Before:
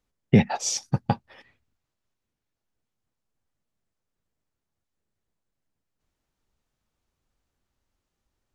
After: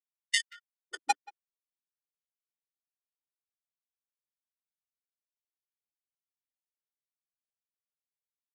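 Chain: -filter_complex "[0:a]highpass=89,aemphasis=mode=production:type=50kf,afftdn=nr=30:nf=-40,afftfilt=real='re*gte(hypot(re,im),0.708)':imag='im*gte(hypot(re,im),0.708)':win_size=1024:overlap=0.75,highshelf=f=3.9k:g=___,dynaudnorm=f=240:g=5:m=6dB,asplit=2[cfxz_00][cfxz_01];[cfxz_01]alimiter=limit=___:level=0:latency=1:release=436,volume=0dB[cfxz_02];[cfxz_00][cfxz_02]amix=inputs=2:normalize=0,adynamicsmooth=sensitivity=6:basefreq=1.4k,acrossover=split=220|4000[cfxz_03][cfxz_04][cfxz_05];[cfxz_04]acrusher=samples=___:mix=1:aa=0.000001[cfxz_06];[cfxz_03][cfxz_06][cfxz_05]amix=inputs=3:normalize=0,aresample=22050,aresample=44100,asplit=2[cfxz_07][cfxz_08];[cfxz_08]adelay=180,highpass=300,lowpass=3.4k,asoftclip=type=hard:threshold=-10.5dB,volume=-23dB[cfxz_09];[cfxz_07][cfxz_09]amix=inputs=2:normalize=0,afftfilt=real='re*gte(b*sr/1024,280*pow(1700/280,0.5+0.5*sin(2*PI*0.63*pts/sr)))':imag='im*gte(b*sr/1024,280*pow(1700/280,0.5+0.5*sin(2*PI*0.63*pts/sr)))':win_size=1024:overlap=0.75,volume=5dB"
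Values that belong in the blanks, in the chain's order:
-3, -13dB, 27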